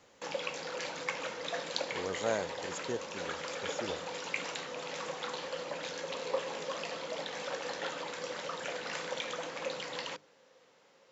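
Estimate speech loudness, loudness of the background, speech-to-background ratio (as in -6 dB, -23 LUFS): -40.5 LUFS, -38.0 LUFS, -2.5 dB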